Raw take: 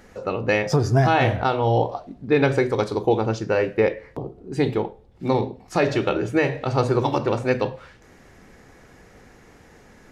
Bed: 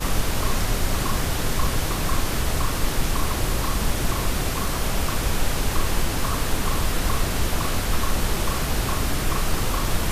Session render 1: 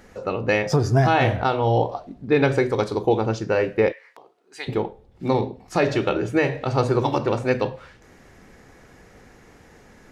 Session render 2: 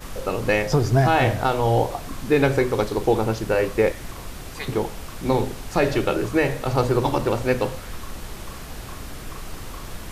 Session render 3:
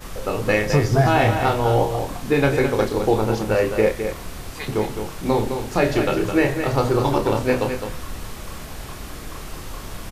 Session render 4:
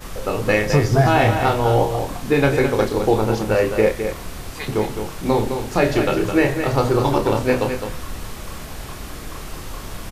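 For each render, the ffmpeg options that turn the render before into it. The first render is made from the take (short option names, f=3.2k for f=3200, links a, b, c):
-filter_complex "[0:a]asplit=3[a][b][c];[a]afade=t=out:st=3.91:d=0.02[d];[b]highpass=1.3k,afade=t=in:st=3.91:d=0.02,afade=t=out:st=4.67:d=0.02[e];[c]afade=t=in:st=4.67:d=0.02[f];[d][e][f]amix=inputs=3:normalize=0"
-filter_complex "[1:a]volume=-12dB[a];[0:a][a]amix=inputs=2:normalize=0"
-filter_complex "[0:a]asplit=2[a][b];[b]adelay=28,volume=-6.5dB[c];[a][c]amix=inputs=2:normalize=0,asplit=2[d][e];[e]aecho=0:1:211:0.422[f];[d][f]amix=inputs=2:normalize=0"
-af "volume=1.5dB"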